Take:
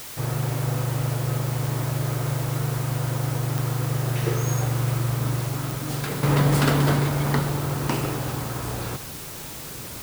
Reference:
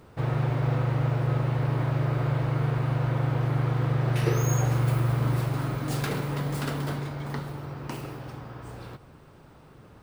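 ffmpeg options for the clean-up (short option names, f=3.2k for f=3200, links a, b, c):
-af "adeclick=t=4,afwtdn=0.013,asetnsamples=n=441:p=0,asendcmd='6.23 volume volume -10.5dB',volume=0dB"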